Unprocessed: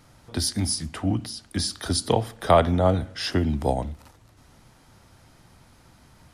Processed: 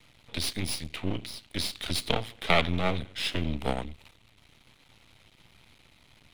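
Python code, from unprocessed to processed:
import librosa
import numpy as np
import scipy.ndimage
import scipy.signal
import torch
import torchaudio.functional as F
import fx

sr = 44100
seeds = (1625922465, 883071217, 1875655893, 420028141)

y = np.maximum(x, 0.0)
y = fx.band_shelf(y, sr, hz=2900.0, db=11.5, octaves=1.2)
y = y * 10.0 ** (-3.5 / 20.0)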